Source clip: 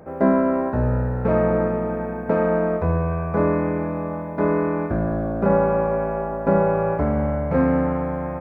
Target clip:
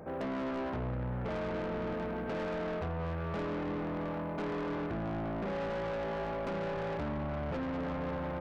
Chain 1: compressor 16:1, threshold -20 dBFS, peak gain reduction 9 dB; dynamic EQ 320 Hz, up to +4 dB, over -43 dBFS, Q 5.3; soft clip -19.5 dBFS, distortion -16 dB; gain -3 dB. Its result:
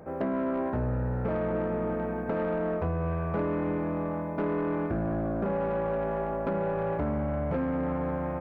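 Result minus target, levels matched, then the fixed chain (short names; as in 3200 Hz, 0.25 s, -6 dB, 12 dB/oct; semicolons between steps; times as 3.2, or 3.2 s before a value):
soft clip: distortion -9 dB
compressor 16:1, threshold -20 dBFS, peak gain reduction 9 dB; dynamic EQ 320 Hz, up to +4 dB, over -43 dBFS, Q 5.3; soft clip -30.5 dBFS, distortion -7 dB; gain -3 dB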